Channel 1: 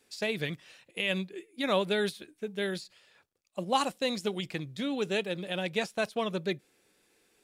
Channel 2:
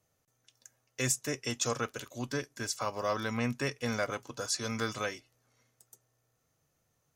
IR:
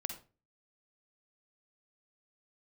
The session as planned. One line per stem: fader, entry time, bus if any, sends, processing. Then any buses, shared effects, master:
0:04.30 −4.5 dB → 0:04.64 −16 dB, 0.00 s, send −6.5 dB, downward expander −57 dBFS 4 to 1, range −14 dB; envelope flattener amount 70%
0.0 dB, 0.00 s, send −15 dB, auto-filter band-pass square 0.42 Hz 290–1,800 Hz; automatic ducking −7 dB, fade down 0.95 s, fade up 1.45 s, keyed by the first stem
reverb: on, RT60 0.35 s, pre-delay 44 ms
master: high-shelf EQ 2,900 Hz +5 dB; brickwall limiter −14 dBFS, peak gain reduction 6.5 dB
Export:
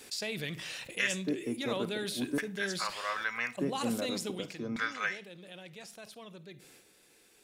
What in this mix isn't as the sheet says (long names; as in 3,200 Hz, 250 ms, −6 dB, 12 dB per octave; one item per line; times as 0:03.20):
stem 1 −4.5 dB → −15.0 dB
stem 2 0.0 dB → +11.0 dB